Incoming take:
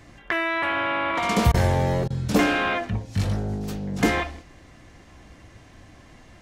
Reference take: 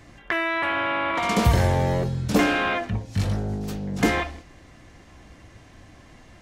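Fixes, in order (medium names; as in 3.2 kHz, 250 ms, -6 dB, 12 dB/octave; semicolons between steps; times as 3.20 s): interpolate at 1.52/2.08 s, 21 ms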